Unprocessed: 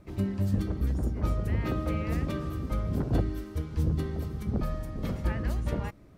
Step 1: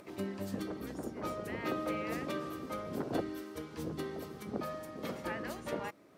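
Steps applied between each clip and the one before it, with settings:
high-pass filter 330 Hz 12 dB per octave
upward compression, threshold −49 dBFS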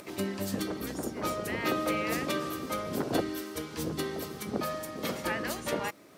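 high-shelf EQ 2,500 Hz +9 dB
level +5 dB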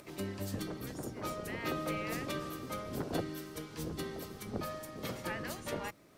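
sub-octave generator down 1 octave, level −3 dB
level −7 dB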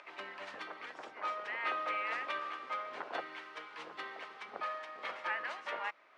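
bad sample-rate conversion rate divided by 3×, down none, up hold
flat-topped band-pass 1,500 Hz, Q 0.77
level +5.5 dB

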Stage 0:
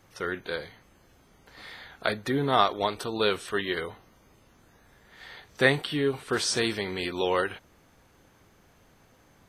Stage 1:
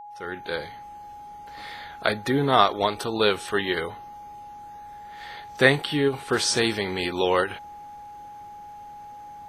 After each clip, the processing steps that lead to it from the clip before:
fade in at the beginning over 0.61 s
steady tone 830 Hz −43 dBFS
every ending faded ahead of time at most 240 dB per second
level +4 dB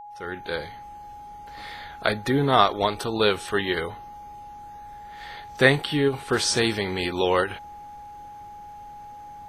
low-shelf EQ 76 Hz +9.5 dB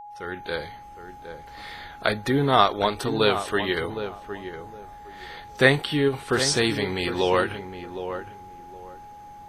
feedback echo with a low-pass in the loop 762 ms, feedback 23%, low-pass 1,300 Hz, level −9 dB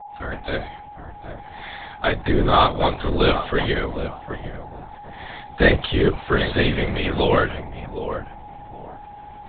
in parallel at −7 dB: sine wavefolder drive 7 dB, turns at −1 dBFS
on the sum: linear-prediction vocoder at 8 kHz whisper
level −4 dB

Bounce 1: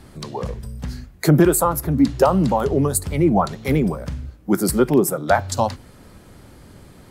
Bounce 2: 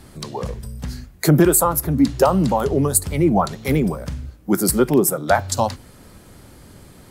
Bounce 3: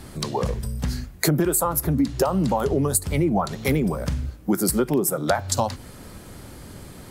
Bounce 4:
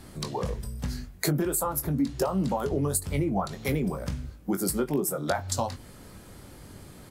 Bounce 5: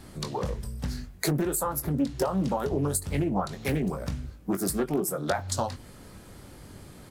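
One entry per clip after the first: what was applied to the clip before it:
high-shelf EQ 5,200 Hz +6 dB
downward compressor 5 to 1, threshold −22 dBFS, peak gain reduction 12 dB; level +3.5 dB
double-tracking delay 21 ms −8.5 dB; level −6.5 dB
highs frequency-modulated by the lows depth 0.44 ms

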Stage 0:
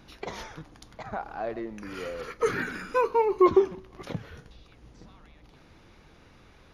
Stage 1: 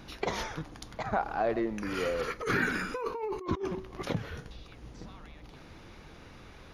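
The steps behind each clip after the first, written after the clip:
compressor whose output falls as the input rises −31 dBFS, ratio −1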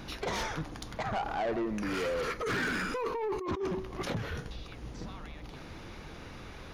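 in parallel at −2.5 dB: brickwall limiter −27 dBFS, peak gain reduction 10 dB
on the sum: soft clipping −28 dBFS, distortion −10 dB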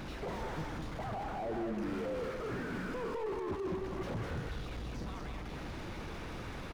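power curve on the samples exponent 0.5
single-tap delay 206 ms −5.5 dB
slew-rate limiting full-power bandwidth 20 Hz
level −5.5 dB

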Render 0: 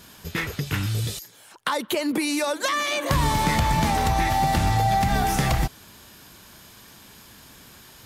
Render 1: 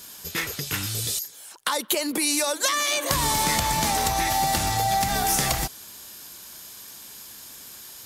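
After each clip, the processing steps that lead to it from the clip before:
bass and treble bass −7 dB, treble +11 dB
level −1.5 dB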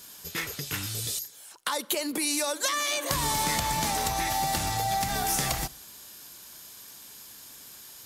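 convolution reverb RT60 0.70 s, pre-delay 7 ms, DRR 18.5 dB
level −4.5 dB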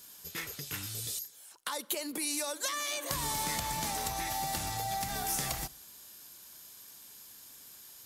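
high-shelf EQ 8,300 Hz +4.5 dB
level −7.5 dB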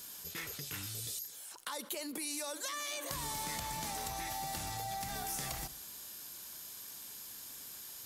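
envelope flattener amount 50%
level −7 dB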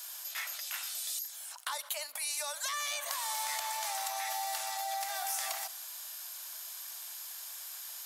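elliptic high-pass filter 640 Hz, stop band 40 dB
level +5 dB

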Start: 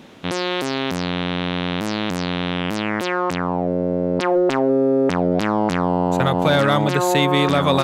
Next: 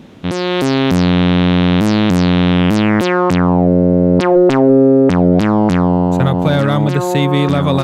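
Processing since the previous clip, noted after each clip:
low-shelf EQ 310 Hz +12 dB
automatic gain control
level −1 dB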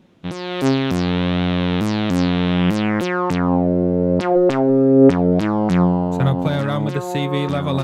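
flanger 0.35 Hz, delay 5.3 ms, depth 4.6 ms, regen +65%
expander for the loud parts 1.5 to 1, over −34 dBFS
level +2 dB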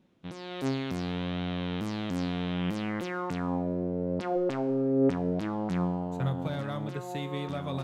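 tuned comb filter 65 Hz, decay 1.2 s, harmonics all, mix 60%
level −6.5 dB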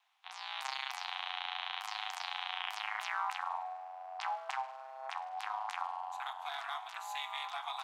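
ring modulation 120 Hz
Chebyshev high-pass with heavy ripple 730 Hz, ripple 3 dB
level +6 dB

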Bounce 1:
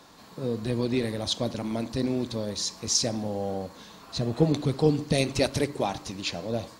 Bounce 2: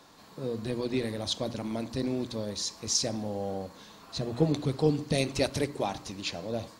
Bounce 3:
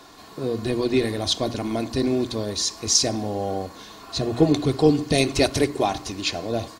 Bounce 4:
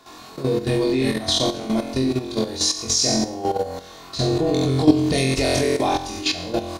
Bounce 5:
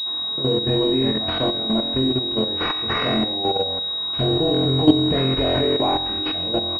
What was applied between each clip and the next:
mains-hum notches 60/120/180/240 Hz; level −3 dB
comb filter 2.8 ms, depth 43%; level +8 dB
flutter between parallel walls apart 3.9 metres, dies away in 0.74 s; output level in coarse steps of 11 dB; level +2.5 dB
switching amplifier with a slow clock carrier 3,800 Hz

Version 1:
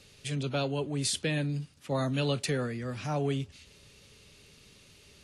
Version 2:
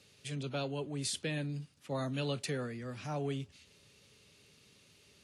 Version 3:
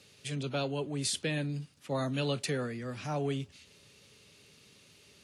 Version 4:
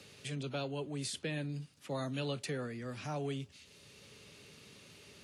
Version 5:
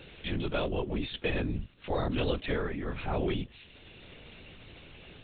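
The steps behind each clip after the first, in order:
high-pass filter 91 Hz; level −6 dB
low-shelf EQ 71 Hz −5 dB; level +4 dB
multiband upward and downward compressor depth 40%; level −5 dB
linear-prediction vocoder at 8 kHz whisper; level +7.5 dB

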